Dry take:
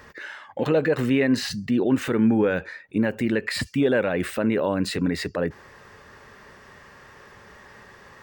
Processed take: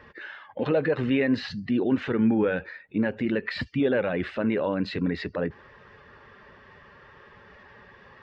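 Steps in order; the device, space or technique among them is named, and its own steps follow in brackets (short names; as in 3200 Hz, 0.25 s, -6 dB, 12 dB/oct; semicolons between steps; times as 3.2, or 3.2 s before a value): clip after many re-uploads (LPF 4100 Hz 24 dB/oct; bin magnitudes rounded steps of 15 dB); gain -2.5 dB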